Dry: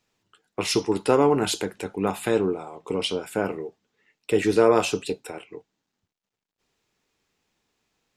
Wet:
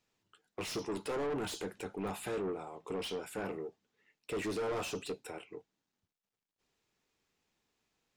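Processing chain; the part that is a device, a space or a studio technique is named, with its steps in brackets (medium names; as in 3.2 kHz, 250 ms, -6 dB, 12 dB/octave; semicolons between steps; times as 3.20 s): saturation between pre-emphasis and de-emphasis (treble shelf 2.9 kHz +10 dB; saturation -25.5 dBFS, distortion -4 dB; treble shelf 2.9 kHz -10 dB); trim -6.5 dB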